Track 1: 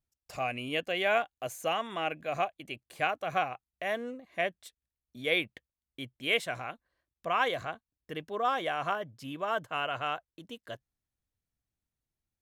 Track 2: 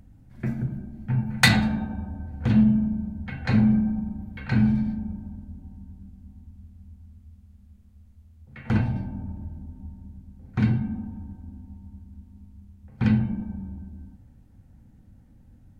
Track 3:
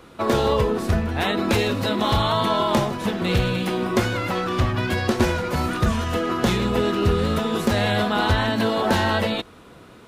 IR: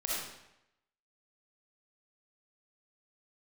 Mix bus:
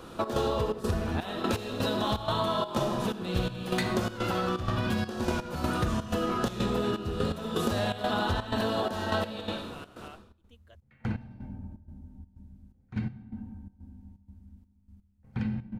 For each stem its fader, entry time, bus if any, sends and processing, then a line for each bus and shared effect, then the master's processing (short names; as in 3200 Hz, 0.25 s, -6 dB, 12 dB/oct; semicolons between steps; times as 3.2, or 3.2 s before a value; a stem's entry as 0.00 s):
-16.0 dB, 0.00 s, no send, dry
-8.5 dB, 2.35 s, send -12.5 dB, dry
-2.5 dB, 0.00 s, send -3.5 dB, bell 2100 Hz -10 dB 0.33 oct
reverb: on, RT60 0.85 s, pre-delay 20 ms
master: step gate "xx.xxx.xxx..x..x" 125 bpm -12 dB; compressor 4:1, threshold -27 dBFS, peak gain reduction 13 dB